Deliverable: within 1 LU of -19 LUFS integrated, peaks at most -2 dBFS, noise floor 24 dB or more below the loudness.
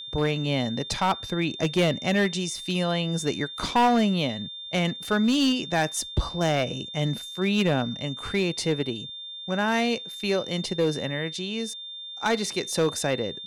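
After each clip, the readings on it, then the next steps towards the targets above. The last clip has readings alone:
clipped samples 1.3%; clipping level -16.5 dBFS; steady tone 3.6 kHz; tone level -36 dBFS; loudness -26.0 LUFS; peak level -16.5 dBFS; loudness target -19.0 LUFS
-> clip repair -16.5 dBFS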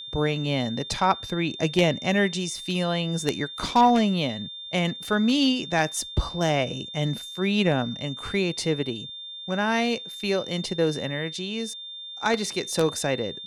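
clipped samples 0.0%; steady tone 3.6 kHz; tone level -36 dBFS
-> band-stop 3.6 kHz, Q 30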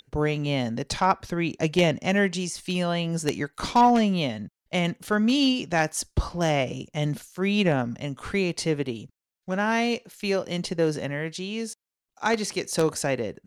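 steady tone not found; loudness -25.5 LUFS; peak level -7.5 dBFS; loudness target -19.0 LUFS
-> trim +6.5 dB; peak limiter -2 dBFS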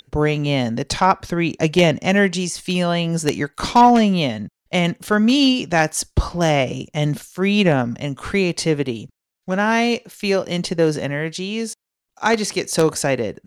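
loudness -19.0 LUFS; peak level -2.0 dBFS; noise floor -83 dBFS

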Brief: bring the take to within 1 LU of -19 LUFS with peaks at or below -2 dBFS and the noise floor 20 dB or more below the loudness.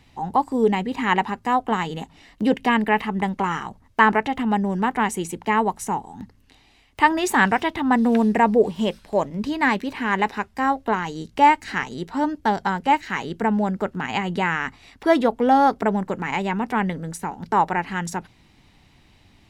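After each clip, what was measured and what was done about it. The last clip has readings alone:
loudness -22.0 LUFS; peak level -2.5 dBFS; loudness target -19.0 LUFS
-> trim +3 dB; peak limiter -2 dBFS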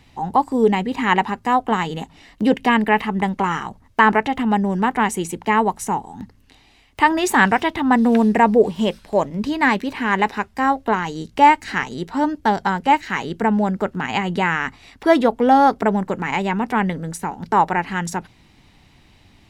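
loudness -19.0 LUFS; peak level -2.0 dBFS; noise floor -53 dBFS

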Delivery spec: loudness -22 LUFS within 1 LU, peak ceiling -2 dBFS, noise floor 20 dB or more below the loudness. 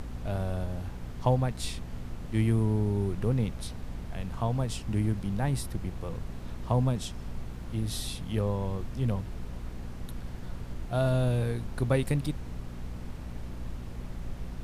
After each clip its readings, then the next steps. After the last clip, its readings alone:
hum 60 Hz; highest harmonic 240 Hz; hum level -39 dBFS; noise floor -40 dBFS; noise floor target -52 dBFS; loudness -32.0 LUFS; peak level -13.5 dBFS; loudness target -22.0 LUFS
-> de-hum 60 Hz, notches 4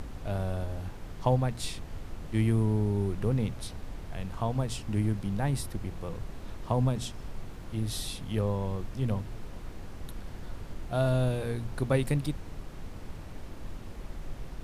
hum not found; noise floor -43 dBFS; noise floor target -52 dBFS
-> noise print and reduce 9 dB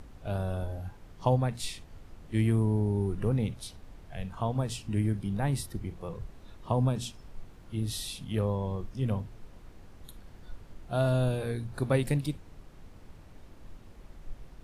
noise floor -52 dBFS; loudness -31.5 LUFS; peak level -13.0 dBFS; loudness target -22.0 LUFS
-> trim +9.5 dB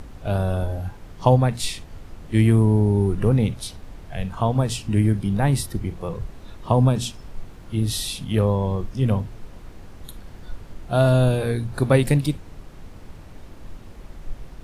loudness -22.0 LUFS; peak level -3.5 dBFS; noise floor -43 dBFS

